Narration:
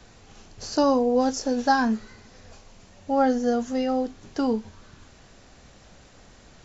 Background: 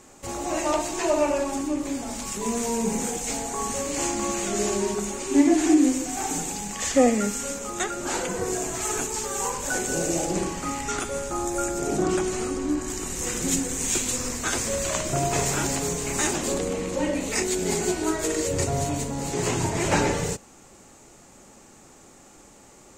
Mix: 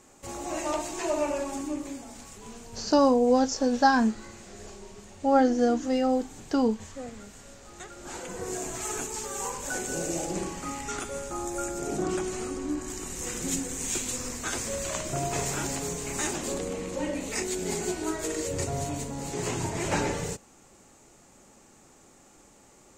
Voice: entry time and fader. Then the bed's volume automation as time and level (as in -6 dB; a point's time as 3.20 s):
2.15 s, 0.0 dB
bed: 1.75 s -5.5 dB
2.66 s -21.5 dB
7.48 s -21.5 dB
8.57 s -5.5 dB